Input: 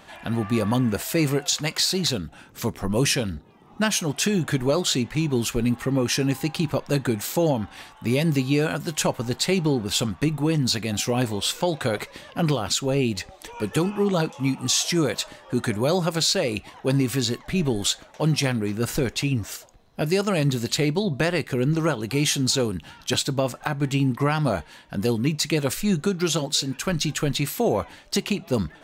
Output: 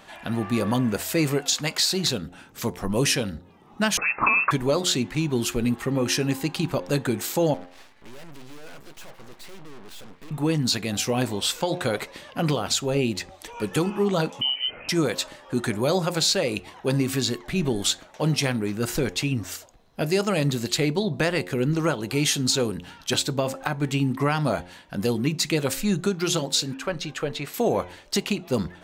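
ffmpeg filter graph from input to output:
-filter_complex "[0:a]asettb=1/sr,asplit=3[s0][s1][s2];[s0]atrim=end=3.974[s3];[s1]atrim=start=3.97:end=4.51,asetpts=PTS-STARTPTS,afade=t=in:d=0.004:c=qsin,afade=t=out:st=0.536:d=0.004:c=qsin,equalizer=f=1700:w=0.99:g=13.5,lowpass=f=2400:t=q:w=0.5098,lowpass=f=2400:t=q:w=0.6013,lowpass=f=2400:t=q:w=0.9,lowpass=f=2400:t=q:w=2.563,afreqshift=-2800[s4];[s2]atrim=start=4.506[s5];[s3][s4]acrossfade=d=0.004:c1=hsin:c2=qsin[s6];[s6][s5]acrossfade=d=0.004:c1=qsin:c2=hsin,asettb=1/sr,asplit=3[s7][s8][s9];[s7]atrim=end=7.544[s10];[s8]atrim=start=7.54:end=10.31,asetpts=PTS-STARTPTS,afade=t=in:d=0.004:c=qsin,afade=t=out:st=2.766:d=0.004:c=qsin,bass=f=250:g=-9,treble=f=4000:g=-9,aeval=exprs='(tanh(89.1*val(0)+0.75)-tanh(0.75))/89.1':c=same,aeval=exprs='abs(val(0))':c=same[s11];[s9]atrim=start=10.306[s12];[s10][s11]acrossfade=d=0.004:c1=hsin:c2=qsin[s13];[s13][s12]acrossfade=d=0.004:c1=qsin:c2=hsin,asettb=1/sr,asplit=3[s14][s15][s16];[s14]atrim=end=14.414[s17];[s15]atrim=start=14.41:end=14.89,asetpts=PTS-STARTPTS,afade=t=in:d=0.004:c=qsin,afade=t=out:st=0.476:d=0.004:c=qsin,lowshelf=f=440:g=7.5,acompressor=threshold=0.0794:ratio=4:attack=3.2:release=140:knee=1:detection=peak,lowpass=f=2700:t=q:w=0.5098,lowpass=f=2700:t=q:w=0.6013,lowpass=f=2700:t=q:w=0.9,lowpass=f=2700:t=q:w=2.563,afreqshift=-3200[s18];[s16]atrim=start=14.886[s19];[s17][s18]acrossfade=d=0.004:c1=hsin:c2=qsin[s20];[s20][s19]acrossfade=d=0.004:c1=qsin:c2=hsin,asettb=1/sr,asplit=3[s21][s22][s23];[s21]atrim=end=26.744[s24];[s22]atrim=start=26.74:end=27.54,asetpts=PTS-STARTPTS,afade=t=in:d=0.004:c=qsin,afade=t=out:st=0.796:d=0.004:c=qsin,lowpass=f=2100:p=1,lowshelf=f=350:t=q:w=1.5:g=-6.5[s25];[s23]atrim=start=27.536[s26];[s24][s25]acrossfade=d=0.004:c1=hsin:c2=qsin[s27];[s27][s26]acrossfade=d=0.004:c1=qsin:c2=hsin,equalizer=f=73:t=o:w=2:g=-4,bandreject=f=89.21:t=h:w=4,bandreject=f=178.42:t=h:w=4,bandreject=f=267.63:t=h:w=4,bandreject=f=356.84:t=h:w=4,bandreject=f=446.05:t=h:w=4,bandreject=f=535.26:t=h:w=4,bandreject=f=624.47:t=h:w=4,bandreject=f=713.68:t=h:w=4,bandreject=f=802.89:t=h:w=4,bandreject=f=892.1:t=h:w=4,bandreject=f=981.31:t=h:w=4"

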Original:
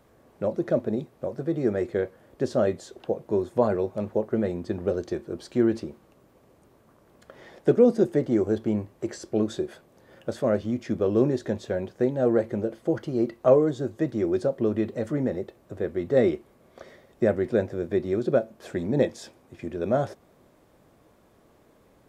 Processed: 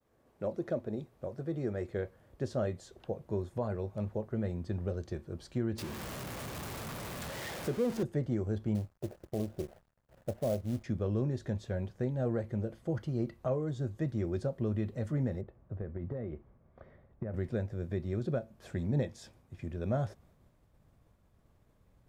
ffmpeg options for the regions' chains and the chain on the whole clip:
-filter_complex "[0:a]asettb=1/sr,asplit=3[s0][s1][s2];[s0]atrim=end=5.784[s3];[s1]atrim=start=5.78:end=8.03,asetpts=PTS-STARTPTS,afade=t=in:d=0.004:c=qsin,afade=t=out:st=2.246:d=0.004:c=qsin,aeval=exprs='val(0)+0.5*0.0473*sgn(val(0))':c=same,highpass=f=230:p=1[s4];[s2]atrim=start=8.026[s5];[s3][s4]acrossfade=d=0.004:c1=hsin:c2=qsin[s6];[s6][s5]acrossfade=d=0.004:c1=qsin:c2=hsin,asettb=1/sr,asplit=3[s7][s8][s9];[s7]atrim=end=8.754[s10];[s8]atrim=start=8.75:end=10.84,asetpts=PTS-STARTPTS,afade=t=in:d=0.004:c=qsin,afade=t=out:st=2.086:d=0.004:c=qsin,lowpass=f=680:t=q:w=2.5,acrusher=bits=5:mode=log:mix=0:aa=0.000001,aeval=exprs='sgn(val(0))*max(abs(val(0))-0.00282,0)':c=same[s11];[s9]atrim=start=10.836[s12];[s10][s11]acrossfade=d=0.004:c1=hsin:c2=qsin[s13];[s13][s12]acrossfade=d=0.004:c1=qsin:c2=hsin,asettb=1/sr,asplit=3[s14][s15][s16];[s14]atrim=end=15.414[s17];[s15]atrim=start=15.41:end=17.34,asetpts=PTS-STARTPTS,afade=t=in:d=0.004:c=qsin,afade=t=out:st=1.926:d=0.004:c=qsin,lowpass=1500,acompressor=threshold=0.0501:ratio=10:attack=3.2:release=140:knee=1:detection=peak[s18];[s16]atrim=start=17.336[s19];[s17][s18]acrossfade=d=0.004:c1=hsin:c2=qsin[s20];[s20][s19]acrossfade=d=0.004:c1=qsin:c2=hsin,agate=range=0.0224:threshold=0.002:ratio=3:detection=peak,asubboost=boost=6:cutoff=130,alimiter=limit=0.188:level=0:latency=1:release=320,volume=0.398"

